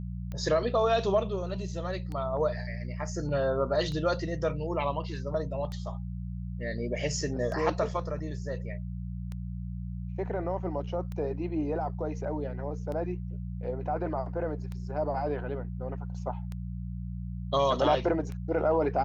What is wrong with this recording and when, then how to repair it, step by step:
hum 60 Hz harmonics 3 -36 dBFS
tick 33 1/3 rpm -26 dBFS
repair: de-click; de-hum 60 Hz, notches 3

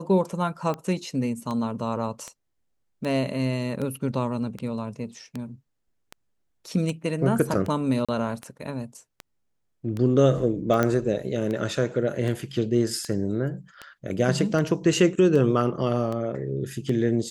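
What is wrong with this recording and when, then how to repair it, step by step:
tick 78 rpm -19 dBFS
8.05–8.09 s: dropout 36 ms
10.83 s: pop -10 dBFS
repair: de-click; interpolate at 8.05 s, 36 ms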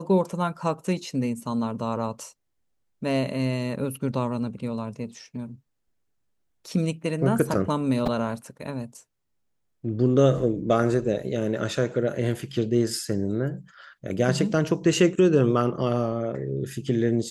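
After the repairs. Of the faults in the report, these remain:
nothing left

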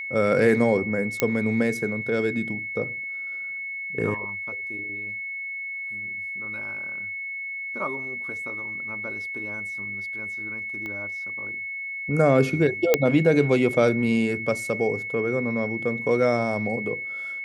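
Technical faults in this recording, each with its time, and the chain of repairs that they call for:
whine 2.2 kHz -30 dBFS
1.20 s: pop -6 dBFS
10.86 s: pop -22 dBFS
12.94 s: pop -3 dBFS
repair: de-click; band-stop 2.2 kHz, Q 30

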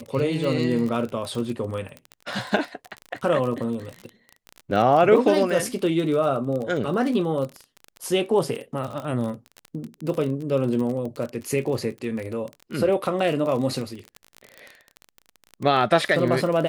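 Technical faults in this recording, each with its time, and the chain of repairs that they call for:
crackle 32 per s -28 dBFS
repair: de-click

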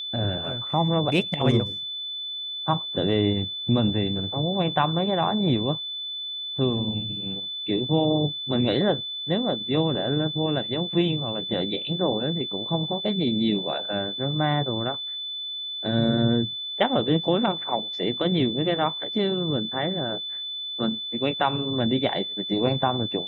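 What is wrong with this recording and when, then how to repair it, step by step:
whine 3.5 kHz -30 dBFS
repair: band-stop 3.5 kHz, Q 30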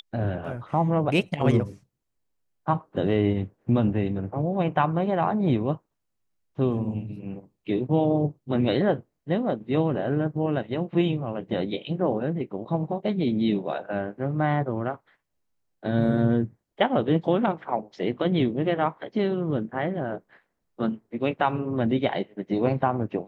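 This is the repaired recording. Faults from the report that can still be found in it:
nothing left

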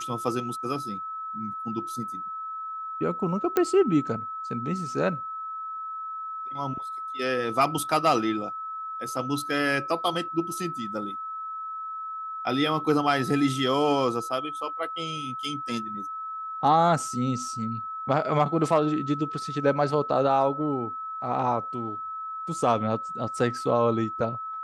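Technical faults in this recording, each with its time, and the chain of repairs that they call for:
whine 1.3 kHz -32 dBFS
3.57 s: pop -10 dBFS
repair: de-click; band-stop 1.3 kHz, Q 30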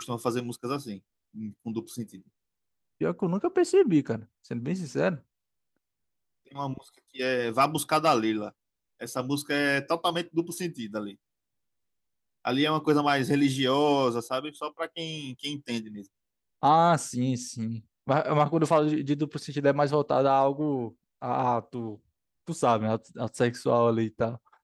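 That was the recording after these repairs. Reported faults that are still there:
nothing left

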